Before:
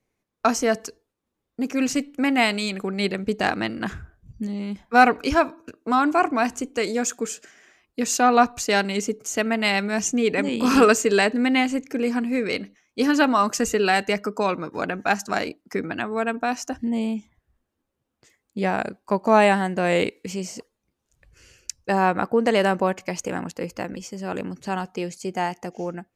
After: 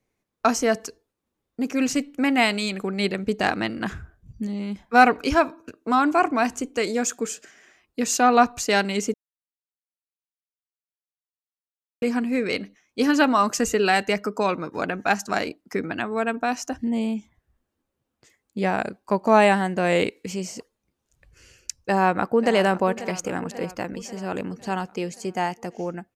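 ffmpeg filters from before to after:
-filter_complex "[0:a]asplit=2[a][b];[b]afade=t=in:st=21.79:d=0.01,afade=t=out:st=22.57:d=0.01,aecho=0:1:540|1080|1620|2160|2700|3240:0.188365|0.113019|0.0678114|0.0406868|0.0244121|0.0146473[c];[a][c]amix=inputs=2:normalize=0,asplit=3[d][e][f];[d]atrim=end=9.14,asetpts=PTS-STARTPTS,afade=t=out:st=9.136:d=0.004:c=hsin[g];[e]atrim=start=9.14:end=12.02,asetpts=PTS-STARTPTS,volume=0[h];[f]atrim=start=12.02,asetpts=PTS-STARTPTS,afade=t=in:d=0.004:c=hsin[i];[g][h][i]concat=n=3:v=0:a=1"

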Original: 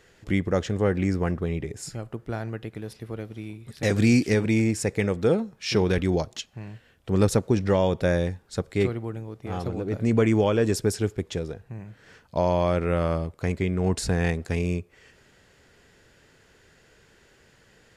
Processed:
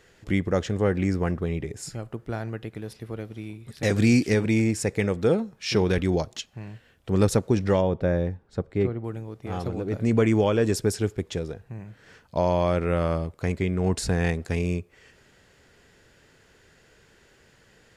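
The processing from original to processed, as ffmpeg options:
-filter_complex "[0:a]asplit=3[a][b][c];[a]afade=t=out:st=7.8:d=0.02[d];[b]lowpass=f=1k:p=1,afade=t=in:st=7.8:d=0.02,afade=t=out:st=9.03:d=0.02[e];[c]afade=t=in:st=9.03:d=0.02[f];[d][e][f]amix=inputs=3:normalize=0"

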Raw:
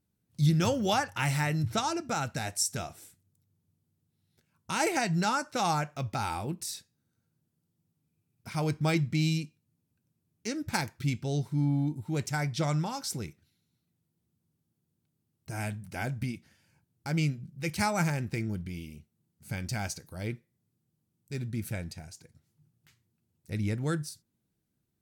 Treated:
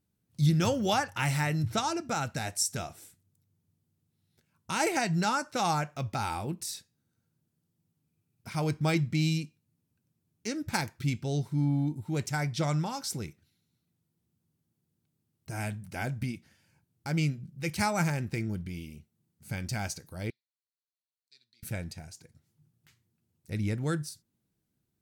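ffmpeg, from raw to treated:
-filter_complex "[0:a]asettb=1/sr,asplit=3[a][b][c];[a]atrim=end=20.304[d];[b]atrim=start=20.3:end=21.63,asetpts=PTS-STARTPTS,afade=t=in:d=0.004:c=qsin,afade=t=out:st=1.326:d=0.004:c=qsin,bandpass=f=4.2k:t=q:w=9.5[e];[c]atrim=start=21.626[f];[d][e]acrossfade=d=0.004:c1=hsin:c2=qsin[g];[g][f]acrossfade=d=0.004:c1=qsin:c2=hsin"

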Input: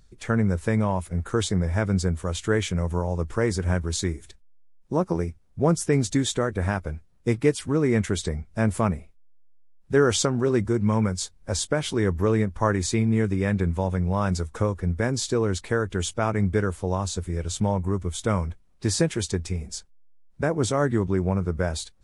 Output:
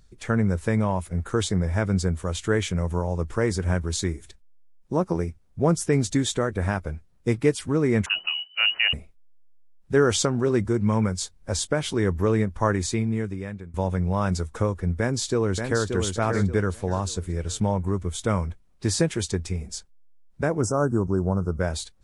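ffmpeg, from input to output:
-filter_complex "[0:a]asettb=1/sr,asplit=3[a][b][c];[a]atrim=end=8.064[d];[b]atrim=start=8.06:end=8.93,asetpts=PTS-STARTPTS,afade=t=in:d=0.004:c=qsin,afade=t=out:st=0.866:d=0.004:c=qsin,lowpass=f=2.6k:t=q:w=0.5098,lowpass=f=2.6k:t=q:w=0.6013,lowpass=f=2.6k:t=q:w=0.9,lowpass=f=2.6k:t=q:w=2.563,afreqshift=-3000[e];[c]atrim=start=8.926[f];[d][e]acrossfade=d=0.004:c1=hsin:c2=qsin[g];[g][f]acrossfade=d=0.004:c1=qsin:c2=hsin,asplit=2[h][i];[i]afade=t=in:st=14.99:d=0.01,afade=t=out:st=15.87:d=0.01,aecho=0:1:580|1160|1740|2320:0.530884|0.159265|0.0477796|0.0143339[j];[h][j]amix=inputs=2:normalize=0,asplit=3[k][l][m];[k]afade=t=out:st=20.61:d=0.02[n];[l]asuperstop=centerf=2800:order=20:qfactor=0.81,afade=t=in:st=20.61:d=0.02,afade=t=out:st=21.59:d=0.02[o];[m]afade=t=in:st=21.59:d=0.02[p];[n][o][p]amix=inputs=3:normalize=0,asplit=2[q][r];[q]atrim=end=13.74,asetpts=PTS-STARTPTS,afade=t=out:st=12.74:d=1:silence=0.0707946[s];[r]atrim=start=13.74,asetpts=PTS-STARTPTS,afade=t=in:d=0.004:c=hsin:silence=0.0707946[t];[s][t]concat=n=2:v=0:a=1"

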